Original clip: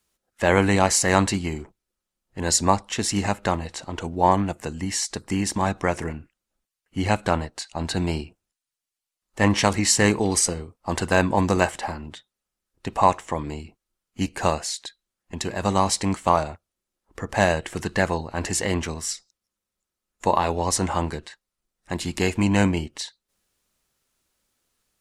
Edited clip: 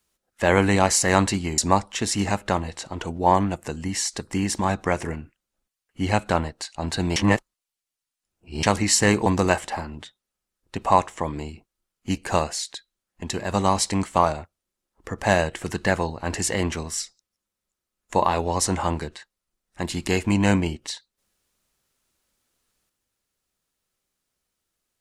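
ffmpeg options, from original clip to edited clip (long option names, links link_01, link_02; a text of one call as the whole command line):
ffmpeg -i in.wav -filter_complex "[0:a]asplit=5[link_01][link_02][link_03][link_04][link_05];[link_01]atrim=end=1.582[link_06];[link_02]atrim=start=2.548:end=8.132[link_07];[link_03]atrim=start=8.128:end=9.602,asetpts=PTS-STARTPTS,areverse[link_08];[link_04]atrim=start=9.598:end=10.232[link_09];[link_05]atrim=start=11.368[link_10];[link_06][link_07]acrossfade=duration=0.004:curve1=hsin:curve2=hsin[link_11];[link_11][link_08]acrossfade=duration=0.004:curve1=hsin:curve2=hsin[link_12];[link_12][link_09]acrossfade=duration=0.004:curve1=hsin:curve2=hsin[link_13];[link_13][link_10]acrossfade=duration=0.004:curve1=hsin:curve2=hsin" out.wav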